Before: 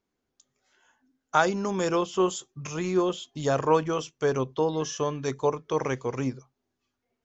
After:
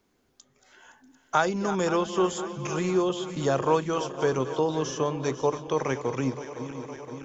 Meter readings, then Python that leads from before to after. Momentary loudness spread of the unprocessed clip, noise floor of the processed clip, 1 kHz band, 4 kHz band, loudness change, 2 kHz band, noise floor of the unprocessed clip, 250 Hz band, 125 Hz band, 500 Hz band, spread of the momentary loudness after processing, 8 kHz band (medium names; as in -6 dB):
8 LU, -69 dBFS, 0.0 dB, +0.5 dB, 0.0 dB, 0.0 dB, -82 dBFS, +1.0 dB, +0.5 dB, 0.0 dB, 9 LU, no reading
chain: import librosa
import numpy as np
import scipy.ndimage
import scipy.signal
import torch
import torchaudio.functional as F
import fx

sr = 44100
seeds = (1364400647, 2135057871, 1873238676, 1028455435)

y = fx.reverse_delay_fb(x, sr, ms=258, feedback_pct=73, wet_db=-13.5)
y = y + 10.0 ** (-23.5 / 20.0) * np.pad(y, (int(640 * sr / 1000.0), 0))[:len(y)]
y = fx.band_squash(y, sr, depth_pct=40)